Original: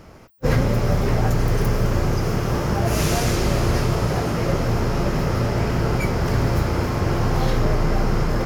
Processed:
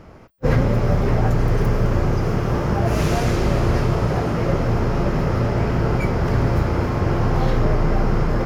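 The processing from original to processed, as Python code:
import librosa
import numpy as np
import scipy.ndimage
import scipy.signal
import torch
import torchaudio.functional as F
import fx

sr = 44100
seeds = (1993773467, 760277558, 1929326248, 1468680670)

y = fx.high_shelf(x, sr, hz=4100.0, db=-12.0)
y = y * librosa.db_to_amplitude(1.5)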